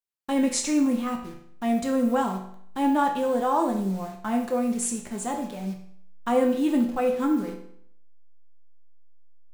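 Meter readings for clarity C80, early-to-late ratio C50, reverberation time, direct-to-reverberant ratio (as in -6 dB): 10.5 dB, 7.0 dB, 0.65 s, 1.0 dB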